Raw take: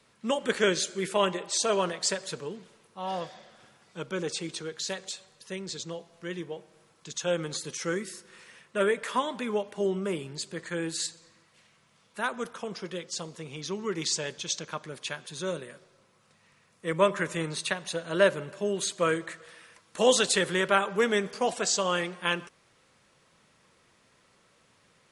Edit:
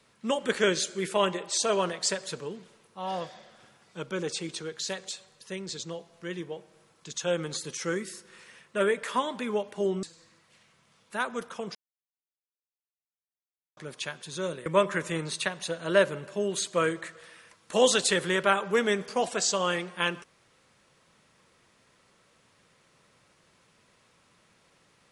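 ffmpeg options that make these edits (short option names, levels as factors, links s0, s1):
-filter_complex "[0:a]asplit=5[s0][s1][s2][s3][s4];[s0]atrim=end=10.032[s5];[s1]atrim=start=11.068:end=12.79,asetpts=PTS-STARTPTS,afade=t=out:st=1.718:d=0.004:c=hsin[s6];[s2]atrim=start=12.79:end=14.81,asetpts=PTS-STARTPTS,volume=0[s7];[s3]atrim=start=14.81:end=15.702,asetpts=PTS-STARTPTS,afade=t=in:d=0.004:c=hsin[s8];[s4]atrim=start=16.908[s9];[s6][s7][s8]concat=n=3:v=0:a=1[s10];[s5][s10]acrossfade=d=0.004:c1=hsin:c2=hsin[s11];[s11][s9]acrossfade=d=0.004:c1=hsin:c2=hsin"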